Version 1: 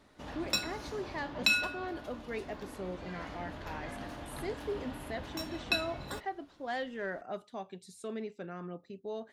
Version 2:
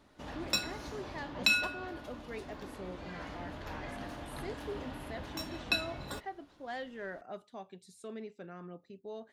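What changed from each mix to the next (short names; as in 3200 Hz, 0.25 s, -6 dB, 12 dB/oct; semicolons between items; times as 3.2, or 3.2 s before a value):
speech -4.5 dB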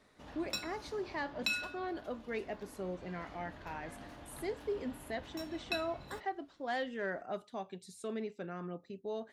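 speech +4.5 dB; background -7.5 dB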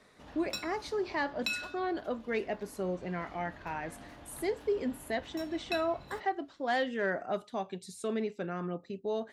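speech +6.0 dB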